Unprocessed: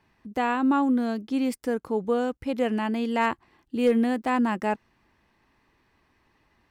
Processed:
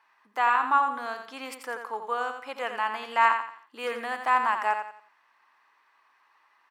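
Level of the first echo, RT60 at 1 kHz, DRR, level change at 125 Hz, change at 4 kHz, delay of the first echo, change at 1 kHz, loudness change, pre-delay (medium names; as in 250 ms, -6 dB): -7.5 dB, no reverb, no reverb, no reading, +0.5 dB, 87 ms, +5.0 dB, -1.5 dB, no reverb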